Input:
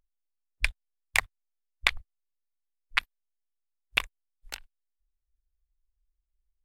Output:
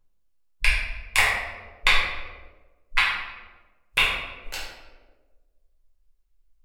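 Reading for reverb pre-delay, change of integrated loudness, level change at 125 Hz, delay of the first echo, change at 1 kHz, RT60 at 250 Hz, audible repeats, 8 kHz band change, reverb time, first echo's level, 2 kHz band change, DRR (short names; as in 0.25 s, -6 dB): 6 ms, +6.5 dB, +9.0 dB, none, +10.0 dB, 1.5 s, none, +6.0 dB, 1.3 s, none, +8.0 dB, -9.0 dB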